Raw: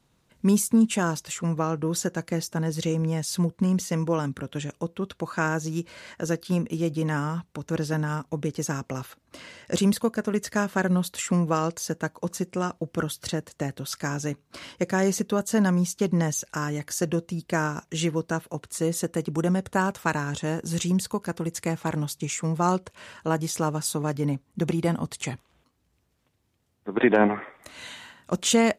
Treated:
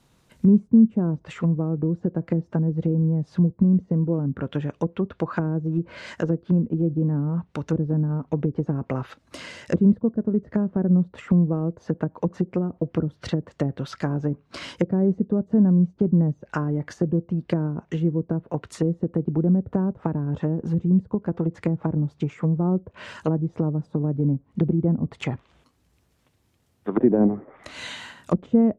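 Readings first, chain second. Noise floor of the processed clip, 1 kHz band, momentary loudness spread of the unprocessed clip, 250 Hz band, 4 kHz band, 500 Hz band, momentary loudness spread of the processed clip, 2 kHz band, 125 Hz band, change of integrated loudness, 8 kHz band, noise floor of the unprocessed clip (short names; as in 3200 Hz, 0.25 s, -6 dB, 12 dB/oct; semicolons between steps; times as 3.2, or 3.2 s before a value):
-64 dBFS, -7.5 dB, 11 LU, +4.5 dB, -8.5 dB, 0.0 dB, 10 LU, -9.0 dB, +5.5 dB, +3.0 dB, under -20 dB, -69 dBFS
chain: treble ducked by the level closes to 330 Hz, closed at -23.5 dBFS; gain +5.5 dB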